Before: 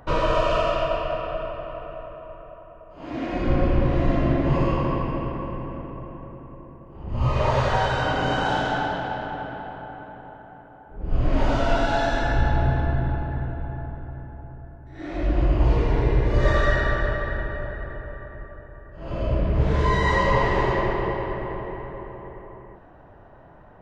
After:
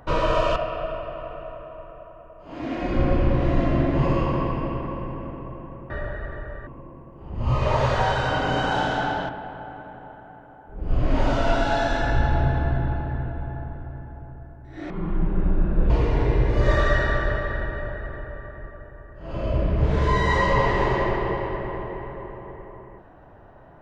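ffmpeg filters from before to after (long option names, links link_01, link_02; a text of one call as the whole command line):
ffmpeg -i in.wav -filter_complex "[0:a]asplit=7[link_01][link_02][link_03][link_04][link_05][link_06][link_07];[link_01]atrim=end=0.562[link_08];[link_02]atrim=start=1.068:end=6.412[link_09];[link_03]atrim=start=17.478:end=18.252[link_10];[link_04]atrim=start=6.408:end=9.032[link_11];[link_05]atrim=start=9.508:end=15.124[link_12];[link_06]atrim=start=15.12:end=15.67,asetpts=PTS-STARTPTS,asetrate=24255,aresample=44100[link_13];[link_07]atrim=start=15.666[link_14];[link_08][link_09]acrossfade=duration=0.004:curve1=hsin:curve2=hsin[link_15];[link_15][link_10]acrossfade=duration=0.004:curve1=hsin:curve2=hsin[link_16];[link_16][link_11]acrossfade=duration=0.004:curve1=hsin:curve2=hsin[link_17];[link_17][link_12]acrossfade=duration=0.004:curve1=hsin:curve2=hsin[link_18];[link_18][link_13]acrossfade=duration=0.004:curve1=hsin:curve2=hsin[link_19];[link_19][link_14]acrossfade=duration=0.004:curve1=hsin:curve2=hsin" out.wav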